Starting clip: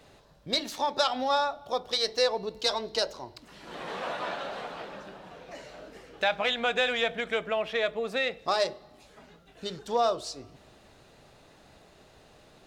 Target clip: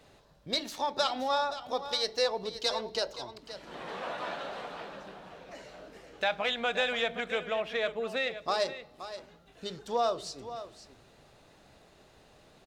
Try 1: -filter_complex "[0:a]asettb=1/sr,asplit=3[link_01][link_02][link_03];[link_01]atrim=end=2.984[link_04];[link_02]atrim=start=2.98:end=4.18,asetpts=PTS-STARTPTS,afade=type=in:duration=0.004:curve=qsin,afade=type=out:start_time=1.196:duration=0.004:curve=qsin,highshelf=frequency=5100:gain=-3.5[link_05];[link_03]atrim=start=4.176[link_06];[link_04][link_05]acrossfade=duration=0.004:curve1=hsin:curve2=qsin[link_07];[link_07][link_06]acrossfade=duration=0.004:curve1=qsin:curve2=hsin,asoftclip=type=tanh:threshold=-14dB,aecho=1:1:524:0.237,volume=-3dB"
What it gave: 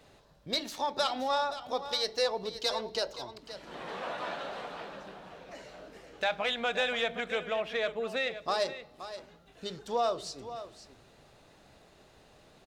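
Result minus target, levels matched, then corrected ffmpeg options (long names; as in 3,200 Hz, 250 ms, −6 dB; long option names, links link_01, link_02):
soft clipping: distortion +21 dB
-filter_complex "[0:a]asettb=1/sr,asplit=3[link_01][link_02][link_03];[link_01]atrim=end=2.984[link_04];[link_02]atrim=start=2.98:end=4.18,asetpts=PTS-STARTPTS,afade=type=in:duration=0.004:curve=qsin,afade=type=out:start_time=1.196:duration=0.004:curve=qsin,highshelf=frequency=5100:gain=-3.5[link_05];[link_03]atrim=start=4.176[link_06];[link_04][link_05]acrossfade=duration=0.004:curve1=hsin:curve2=qsin[link_07];[link_07][link_06]acrossfade=duration=0.004:curve1=qsin:curve2=hsin,asoftclip=type=tanh:threshold=-2.5dB,aecho=1:1:524:0.237,volume=-3dB"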